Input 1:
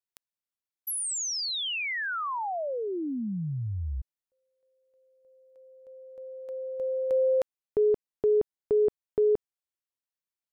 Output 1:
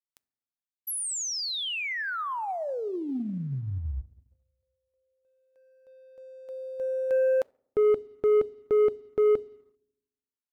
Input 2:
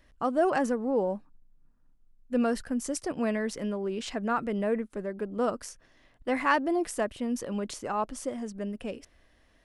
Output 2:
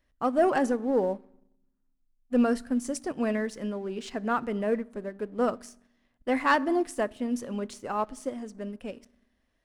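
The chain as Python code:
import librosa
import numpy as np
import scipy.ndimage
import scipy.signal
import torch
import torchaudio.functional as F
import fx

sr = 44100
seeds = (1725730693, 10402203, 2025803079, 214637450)

y = fx.rev_fdn(x, sr, rt60_s=0.87, lf_ratio=1.6, hf_ratio=0.55, size_ms=23.0, drr_db=16.5)
y = fx.leveller(y, sr, passes=1)
y = fx.upward_expand(y, sr, threshold_db=-37.0, expansion=1.5)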